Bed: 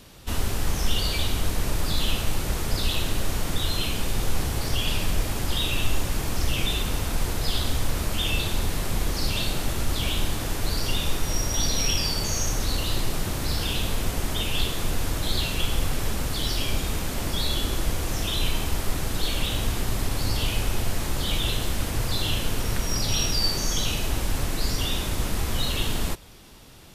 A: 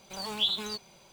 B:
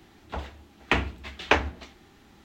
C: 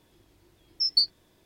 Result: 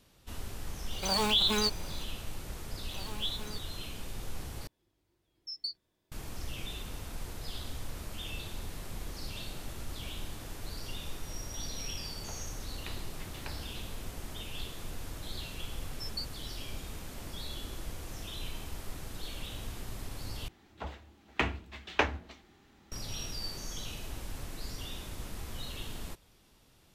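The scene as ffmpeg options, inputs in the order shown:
ffmpeg -i bed.wav -i cue0.wav -i cue1.wav -i cue2.wav -filter_complex "[1:a]asplit=2[link_01][link_02];[3:a]asplit=2[link_03][link_04];[2:a]asplit=2[link_05][link_06];[0:a]volume=-15dB[link_07];[link_01]alimiter=level_in=25dB:limit=-1dB:release=50:level=0:latency=1[link_08];[link_05]acompressor=threshold=-31dB:ratio=6:attack=3.2:release=140:knee=1:detection=peak[link_09];[link_07]asplit=3[link_10][link_11][link_12];[link_10]atrim=end=4.674[link_13];[link_03]atrim=end=1.45,asetpts=PTS-STARTPTS,volume=-15.5dB[link_14];[link_11]atrim=start=6.116:end=20.484[link_15];[link_06]atrim=end=2.44,asetpts=PTS-STARTPTS,volume=-6.5dB[link_16];[link_12]atrim=start=22.916[link_17];[link_08]atrim=end=1.12,asetpts=PTS-STARTPTS,volume=-17dB,afade=type=in:duration=0.004:curve=hsin,afade=type=out:start_time=1.116:duration=0.004:curve=hsin,adelay=920[link_18];[link_02]atrim=end=1.12,asetpts=PTS-STARTPTS,volume=-8.5dB,afade=type=in:duration=0.004:curve=hsin,afade=type=out:start_time=1.116:duration=0.004:curve=hsin,adelay=2810[link_19];[link_09]atrim=end=2.44,asetpts=PTS-STARTPTS,volume=-11dB,afade=type=in:duration=0.004:curve=hsin,afade=type=out:start_time=2.436:duration=0.004:curve=hsin,adelay=11950[link_20];[link_04]atrim=end=1.45,asetpts=PTS-STARTPTS,volume=-17dB,afade=type=in:duration=0.004:curve=hsin,afade=type=out:start_time=1.446:duration=0.004:curve=hsin,adelay=15200[link_21];[link_13][link_14]acrossfade=duration=0.004:curve1=hsin:curve2=hsin[link_22];[link_22][link_15]acrossfade=duration=0.004:curve1=hsin:curve2=hsin[link_23];[link_23][link_16]acrossfade=duration=0.004:curve1=hsin:curve2=hsin[link_24];[link_24][link_17]acrossfade=duration=0.004:curve1=hsin:curve2=hsin[link_25];[link_25][link_18][link_19][link_20][link_21]amix=inputs=5:normalize=0" out.wav

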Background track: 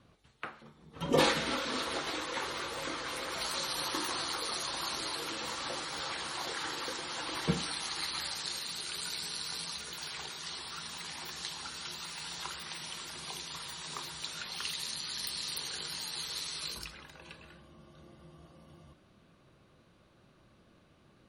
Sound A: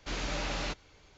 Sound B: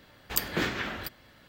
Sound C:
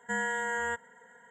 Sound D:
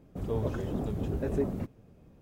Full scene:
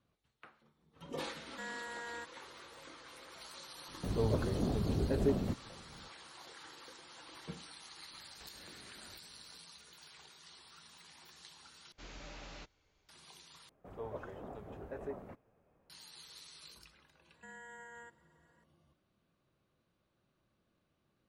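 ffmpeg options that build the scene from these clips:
ffmpeg -i bed.wav -i cue0.wav -i cue1.wav -i cue2.wav -i cue3.wav -filter_complex "[3:a]asplit=2[link_01][link_02];[4:a]asplit=2[link_03][link_04];[0:a]volume=-15.5dB[link_05];[link_01]asoftclip=type=tanh:threshold=-25.5dB[link_06];[2:a]acompressor=threshold=-43dB:ratio=6:attack=3.2:release=140:knee=1:detection=peak[link_07];[link_04]acrossover=split=520 2200:gain=0.158 1 0.2[link_08][link_09][link_10];[link_08][link_09][link_10]amix=inputs=3:normalize=0[link_11];[link_02]alimiter=level_in=4dB:limit=-24dB:level=0:latency=1:release=71,volume=-4dB[link_12];[link_05]asplit=3[link_13][link_14][link_15];[link_13]atrim=end=11.924[link_16];[1:a]atrim=end=1.17,asetpts=PTS-STARTPTS,volume=-15.5dB[link_17];[link_14]atrim=start=13.086:end=13.694[link_18];[link_11]atrim=end=2.21,asetpts=PTS-STARTPTS,volume=-4dB[link_19];[link_15]atrim=start=15.896[link_20];[link_06]atrim=end=1.3,asetpts=PTS-STARTPTS,volume=-11.5dB,afade=type=in:duration=0.004:curve=hsin,afade=type=out:start_time=1.296:duration=0.004:curve=hsin,adelay=1490[link_21];[link_03]atrim=end=2.21,asetpts=PTS-STARTPTS,volume=-1dB,afade=type=in:duration=0.004:curve=hsin,afade=type=out:start_time=2.206:duration=0.004:curve=hsin,adelay=3880[link_22];[link_07]atrim=end=1.48,asetpts=PTS-STARTPTS,volume=-10.5dB,afade=type=in:duration=0.004:curve=hsin,afade=type=out:start_time=1.476:duration=0.004:curve=hsin,adelay=8110[link_23];[link_12]atrim=end=1.3,asetpts=PTS-STARTPTS,volume=-16dB,afade=type=in:duration=0.004:curve=hsin,afade=type=out:start_time=1.296:duration=0.004:curve=hsin,adelay=17340[link_24];[link_16][link_17]acrossfade=duration=0.004:curve1=hsin:curve2=hsin[link_25];[link_25][link_18]acrossfade=duration=0.004:curve1=hsin:curve2=hsin[link_26];[link_26][link_19]acrossfade=duration=0.004:curve1=hsin:curve2=hsin[link_27];[link_27][link_20]acrossfade=duration=0.004:curve1=hsin:curve2=hsin[link_28];[link_28][link_21][link_22][link_23][link_24]amix=inputs=5:normalize=0" out.wav

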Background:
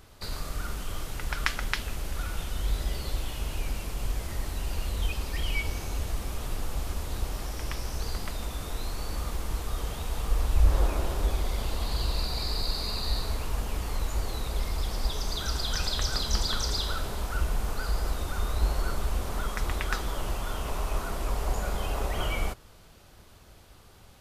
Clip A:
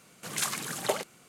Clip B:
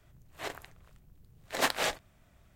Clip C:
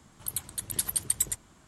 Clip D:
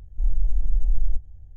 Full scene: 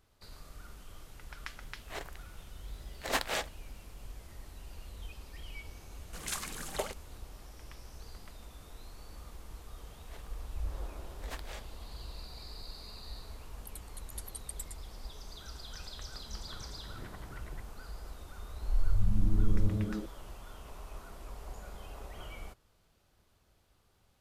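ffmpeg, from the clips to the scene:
ffmpeg -i bed.wav -i cue0.wav -i cue1.wav -i cue2.wav -i cue3.wav -filter_complex "[2:a]asplit=2[link_01][link_02];[3:a]asplit=2[link_03][link_04];[0:a]volume=-16dB[link_05];[link_04]lowpass=frequency=2000:width=0.5412,lowpass=frequency=2000:width=1.3066[link_06];[4:a]asplit=7[link_07][link_08][link_09][link_10][link_11][link_12][link_13];[link_08]adelay=154,afreqshift=-110,volume=-11dB[link_14];[link_09]adelay=308,afreqshift=-220,volume=-16.4dB[link_15];[link_10]adelay=462,afreqshift=-330,volume=-21.7dB[link_16];[link_11]adelay=616,afreqshift=-440,volume=-27.1dB[link_17];[link_12]adelay=770,afreqshift=-550,volume=-32.4dB[link_18];[link_13]adelay=924,afreqshift=-660,volume=-37.8dB[link_19];[link_07][link_14][link_15][link_16][link_17][link_18][link_19]amix=inputs=7:normalize=0[link_20];[link_01]atrim=end=2.55,asetpts=PTS-STARTPTS,volume=-3.5dB,afade=type=in:duration=0.004:curve=hsin,afade=type=out:start_time=2.546:duration=0.004:curve=hsin,adelay=1510[link_21];[1:a]atrim=end=1.28,asetpts=PTS-STARTPTS,volume=-7dB,afade=type=in:duration=0.004:curve=hsin,afade=type=out:start_time=1.276:duration=0.004:curve=hsin,adelay=5900[link_22];[link_02]atrim=end=2.55,asetpts=PTS-STARTPTS,volume=-17.5dB,afade=type=in:duration=0.004:curve=hsin,afade=type=out:start_time=2.546:duration=0.004:curve=hsin,adelay=9690[link_23];[link_03]atrim=end=1.67,asetpts=PTS-STARTPTS,volume=-16.5dB,afade=type=in:duration=0.004:curve=hsin,afade=type=out:start_time=1.666:duration=0.004:curve=hsin,adelay=13390[link_24];[link_06]atrim=end=1.67,asetpts=PTS-STARTPTS,volume=-4dB,afade=type=in:duration=0.004:curve=hsin,afade=type=out:start_time=1.666:duration=0.004:curve=hsin,adelay=16260[link_25];[link_20]atrim=end=1.56,asetpts=PTS-STARTPTS,volume=-7dB,afade=type=in:duration=0.004:curve=hsin,afade=type=out:start_time=1.556:duration=0.004:curve=hsin,adelay=18500[link_26];[link_05][link_21][link_22][link_23][link_24][link_25][link_26]amix=inputs=7:normalize=0" out.wav

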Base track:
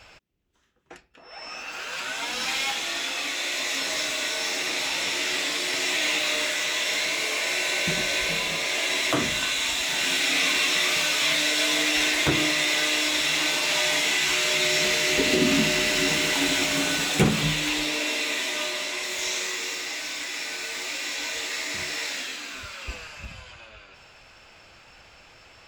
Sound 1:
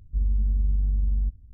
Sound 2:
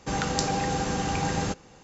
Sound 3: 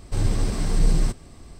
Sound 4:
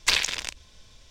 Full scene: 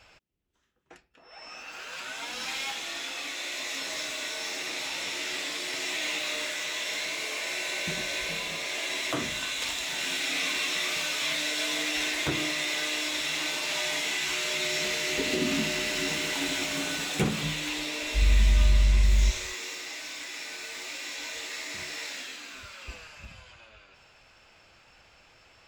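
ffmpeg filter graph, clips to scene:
ffmpeg -i bed.wav -i cue0.wav -i cue1.wav -i cue2.wav -i cue3.wav -filter_complex "[0:a]volume=-6.5dB[link_01];[4:a]aeval=exprs='val(0)*sgn(sin(2*PI*520*n/s))':channel_layout=same[link_02];[1:a]dynaudnorm=framelen=110:gausssize=3:maxgain=11.5dB[link_03];[link_02]atrim=end=1.1,asetpts=PTS-STARTPTS,volume=-16.5dB,afade=type=in:duration=0.004:curve=hsin,afade=type=out:start_time=1.096:duration=0.004:curve=hsin,adelay=420714S[link_04];[link_03]atrim=end=1.53,asetpts=PTS-STARTPTS,volume=-8.5dB,afade=type=in:duration=0.004:curve=hsin,afade=type=out:start_time=1.526:duration=0.004:curve=hsin,adelay=18010[link_05];[link_01][link_04][link_05]amix=inputs=3:normalize=0" out.wav

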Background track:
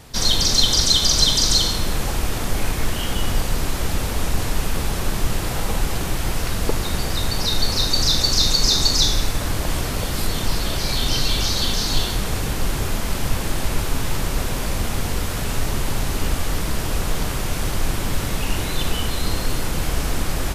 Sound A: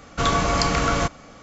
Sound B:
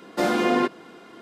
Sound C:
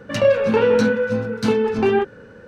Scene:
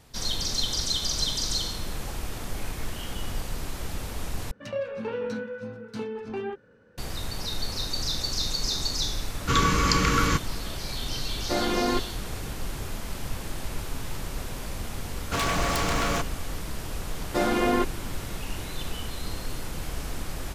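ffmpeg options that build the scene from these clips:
ffmpeg -i bed.wav -i cue0.wav -i cue1.wav -i cue2.wav -filter_complex "[1:a]asplit=2[link_01][link_02];[2:a]asplit=2[link_03][link_04];[0:a]volume=-11dB[link_05];[link_01]asuperstop=centerf=690:order=4:qfactor=1.4[link_06];[link_02]aeval=exprs='0.119*(abs(mod(val(0)/0.119+3,4)-2)-1)':channel_layout=same[link_07];[link_05]asplit=2[link_08][link_09];[link_08]atrim=end=4.514[link_10];[3:a]atrim=end=2.47,asetpts=PTS-STARTPTS,volume=-15.5dB[link_11];[link_09]atrim=start=6.976[link_12];[link_06]atrim=end=1.42,asetpts=PTS-STARTPTS,volume=-0.5dB,afade=type=in:duration=0.004:curve=hsin,afade=type=out:start_time=1.416:duration=0.004:curve=hsin,adelay=410130S[link_13];[link_03]atrim=end=1.21,asetpts=PTS-STARTPTS,volume=-5dB,afade=type=in:duration=0.004:curve=hsin,afade=type=out:start_time=1.206:duration=0.004:curve=hsin,adelay=11320[link_14];[link_07]atrim=end=1.42,asetpts=PTS-STARTPTS,volume=-2.5dB,afade=type=in:duration=0.004:curve=hsin,afade=type=out:start_time=1.416:duration=0.004:curve=hsin,adelay=15140[link_15];[link_04]atrim=end=1.21,asetpts=PTS-STARTPTS,volume=-2.5dB,afade=type=in:duration=0.004:curve=hsin,afade=type=out:start_time=1.206:duration=0.004:curve=hsin,adelay=17170[link_16];[link_10][link_11]acrossfade=duration=0.004:curve1=hsin:curve2=hsin[link_17];[link_17][link_12]acrossfade=duration=0.004:curve1=hsin:curve2=hsin[link_18];[link_18][link_13][link_14][link_15][link_16]amix=inputs=5:normalize=0" out.wav

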